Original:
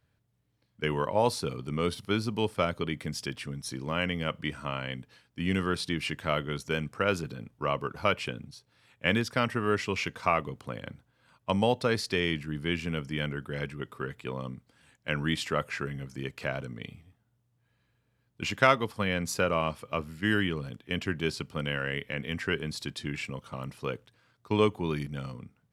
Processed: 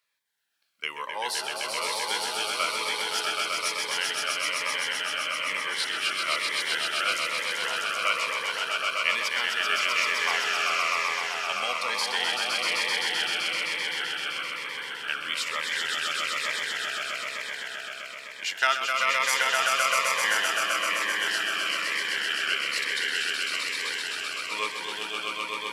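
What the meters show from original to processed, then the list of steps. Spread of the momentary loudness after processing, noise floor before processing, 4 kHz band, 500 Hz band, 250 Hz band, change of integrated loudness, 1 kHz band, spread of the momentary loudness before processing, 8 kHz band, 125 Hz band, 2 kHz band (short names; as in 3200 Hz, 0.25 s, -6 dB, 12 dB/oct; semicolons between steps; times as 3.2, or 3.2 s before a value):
8 LU, -73 dBFS, +11.0 dB, -6.0 dB, -16.0 dB, +5.0 dB, +4.5 dB, 12 LU, +12.5 dB, under -25 dB, +9.0 dB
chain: HPF 1300 Hz 12 dB/oct; swelling echo 0.129 s, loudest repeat 5, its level -3.5 dB; cascading phaser falling 1.1 Hz; gain +5.5 dB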